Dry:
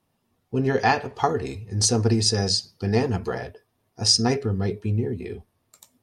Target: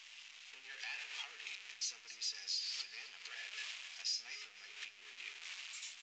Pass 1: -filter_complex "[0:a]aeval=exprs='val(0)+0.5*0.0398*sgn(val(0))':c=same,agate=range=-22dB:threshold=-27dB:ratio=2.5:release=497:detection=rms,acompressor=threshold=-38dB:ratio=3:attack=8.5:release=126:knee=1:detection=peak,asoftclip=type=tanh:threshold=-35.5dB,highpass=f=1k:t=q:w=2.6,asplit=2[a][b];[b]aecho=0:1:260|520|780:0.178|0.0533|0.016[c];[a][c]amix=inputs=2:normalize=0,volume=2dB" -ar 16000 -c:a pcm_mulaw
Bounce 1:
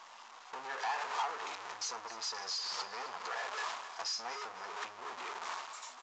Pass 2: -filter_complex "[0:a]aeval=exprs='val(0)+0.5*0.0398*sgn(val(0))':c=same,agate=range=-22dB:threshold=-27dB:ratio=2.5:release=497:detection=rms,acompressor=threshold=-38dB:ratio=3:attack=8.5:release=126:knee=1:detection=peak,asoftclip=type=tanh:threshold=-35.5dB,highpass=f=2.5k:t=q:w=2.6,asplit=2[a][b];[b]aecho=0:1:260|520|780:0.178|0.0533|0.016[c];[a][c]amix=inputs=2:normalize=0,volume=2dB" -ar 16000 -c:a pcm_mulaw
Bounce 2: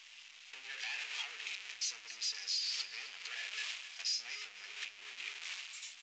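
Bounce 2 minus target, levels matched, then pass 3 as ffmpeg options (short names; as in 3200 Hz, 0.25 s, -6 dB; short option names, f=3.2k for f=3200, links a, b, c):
compressor: peak gain reduction -5.5 dB
-filter_complex "[0:a]aeval=exprs='val(0)+0.5*0.0398*sgn(val(0))':c=same,agate=range=-22dB:threshold=-27dB:ratio=2.5:release=497:detection=rms,acompressor=threshold=-46.5dB:ratio=3:attack=8.5:release=126:knee=1:detection=peak,asoftclip=type=tanh:threshold=-35.5dB,highpass=f=2.5k:t=q:w=2.6,asplit=2[a][b];[b]aecho=0:1:260|520|780:0.178|0.0533|0.016[c];[a][c]amix=inputs=2:normalize=0,volume=2dB" -ar 16000 -c:a pcm_mulaw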